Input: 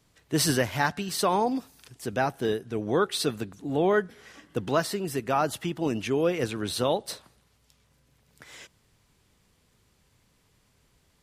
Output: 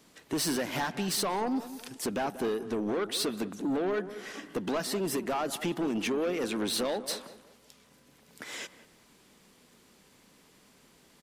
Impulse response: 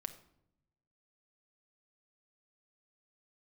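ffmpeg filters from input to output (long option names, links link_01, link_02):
-filter_complex "[0:a]lowshelf=frequency=150:width_type=q:width=1.5:gain=-12.5,acompressor=threshold=-31dB:ratio=4,asoftclip=type=tanh:threshold=-32.5dB,asplit=2[link_01][link_02];[link_02]adelay=187,lowpass=frequency=1400:poles=1,volume=-13dB,asplit=2[link_03][link_04];[link_04]adelay=187,lowpass=frequency=1400:poles=1,volume=0.38,asplit=2[link_05][link_06];[link_06]adelay=187,lowpass=frequency=1400:poles=1,volume=0.38,asplit=2[link_07][link_08];[link_08]adelay=187,lowpass=frequency=1400:poles=1,volume=0.38[link_09];[link_01][link_03][link_05][link_07][link_09]amix=inputs=5:normalize=0,volume=7dB"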